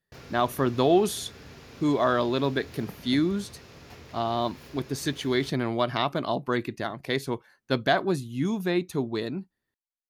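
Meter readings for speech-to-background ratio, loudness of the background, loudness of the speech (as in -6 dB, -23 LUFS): 19.5 dB, -47.0 LUFS, -27.5 LUFS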